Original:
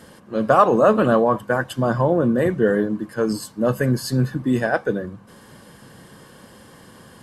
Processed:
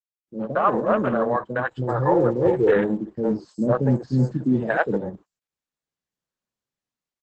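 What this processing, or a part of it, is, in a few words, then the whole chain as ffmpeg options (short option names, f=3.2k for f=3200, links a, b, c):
video call: -filter_complex "[0:a]afwtdn=0.0501,agate=range=-40dB:threshold=-37dB:ratio=16:detection=peak,asettb=1/sr,asplit=3[a][b][c];[a]atrim=end=1.624[d];[b]atrim=start=1.62:end=2.76,asetpts=PTS-STARTPTS,afade=t=in:d=0.004:c=qsin,afade=t=out:st=1.136:d=0.004:c=qsin,aecho=1:1:2.3:0.81,atrim=end_sample=50274[e];[c]atrim=start=2.756[f];[d][e]acrossfade=d=0.004:c1=hsin:c2=qsin[g];[g][f]acrossfade=d=0.004:c1=qsin:c2=hsin,highpass=110,acrossover=split=420|5800[h][i][j];[i]adelay=60[k];[j]adelay=190[l];[h][k][l]amix=inputs=3:normalize=0,dynaudnorm=f=340:g=5:m=16dB,volume=-5.5dB" -ar 48000 -c:a libopus -b:a 12k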